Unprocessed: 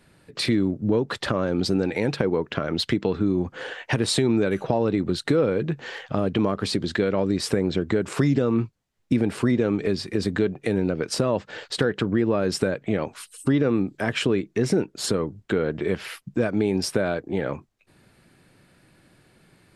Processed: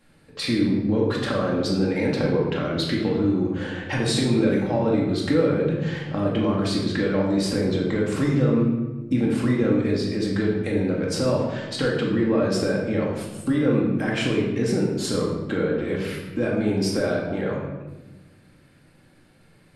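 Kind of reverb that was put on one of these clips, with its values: shoebox room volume 670 m³, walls mixed, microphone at 2.2 m; gain -5 dB

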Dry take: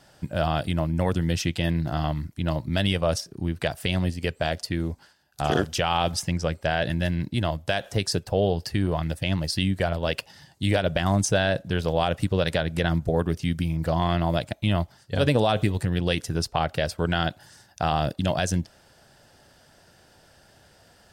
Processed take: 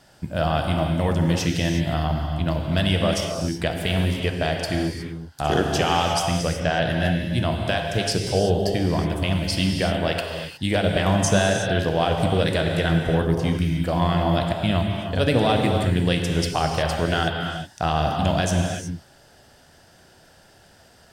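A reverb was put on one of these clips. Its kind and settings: non-linear reverb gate 0.39 s flat, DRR 1.5 dB; gain +1 dB

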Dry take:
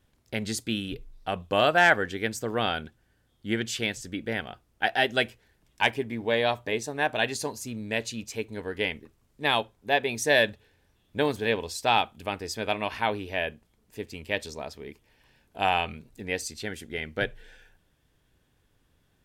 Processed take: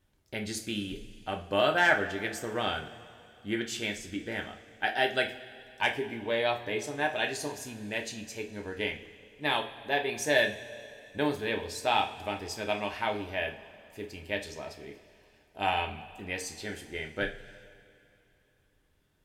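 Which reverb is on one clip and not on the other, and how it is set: two-slope reverb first 0.32 s, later 2.9 s, from -19 dB, DRR 2 dB; gain -5.5 dB

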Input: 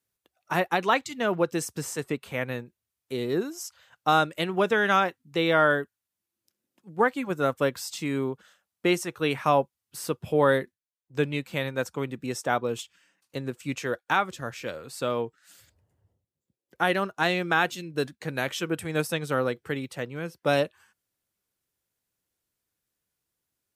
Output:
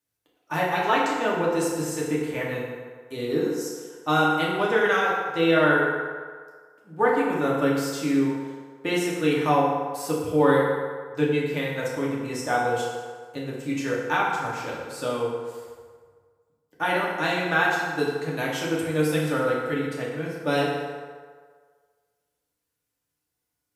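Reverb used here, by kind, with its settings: FDN reverb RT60 1.7 s, low-frequency decay 0.7×, high-frequency decay 0.6×, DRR -5.5 dB; gain -4.5 dB

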